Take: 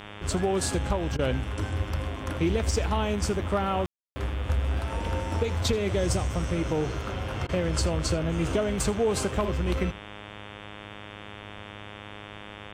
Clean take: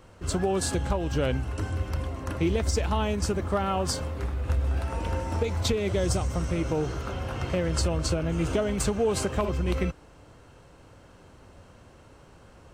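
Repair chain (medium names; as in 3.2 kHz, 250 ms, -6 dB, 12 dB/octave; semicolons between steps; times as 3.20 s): de-hum 103.5 Hz, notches 35; room tone fill 3.86–4.16 s; interpolate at 1.17/7.47 s, 18 ms; inverse comb 81 ms -20 dB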